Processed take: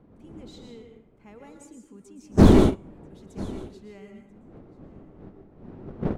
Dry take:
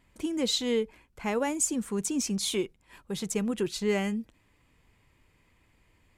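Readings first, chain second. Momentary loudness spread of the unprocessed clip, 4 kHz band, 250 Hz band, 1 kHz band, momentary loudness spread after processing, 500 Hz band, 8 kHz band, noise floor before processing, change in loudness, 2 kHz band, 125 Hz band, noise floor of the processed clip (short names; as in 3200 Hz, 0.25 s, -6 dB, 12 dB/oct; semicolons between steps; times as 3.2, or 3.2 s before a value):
10 LU, -9.0 dB, +6.5 dB, +4.0 dB, 22 LU, +3.0 dB, -16.0 dB, -67 dBFS, +10.0 dB, -3.5 dB, +15.0 dB, -56 dBFS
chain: wind noise 320 Hz -27 dBFS; high shelf 4500 Hz -7.5 dB; plate-style reverb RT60 0.77 s, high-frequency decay 0.65×, pre-delay 0.105 s, DRR 3.5 dB; gate -18 dBFS, range -22 dB; bell 220 Hz +3.5 dB 1.2 oct; on a send: echo 0.988 s -21 dB; on the sum: slew limiter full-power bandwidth 100 Hz; gain +1.5 dB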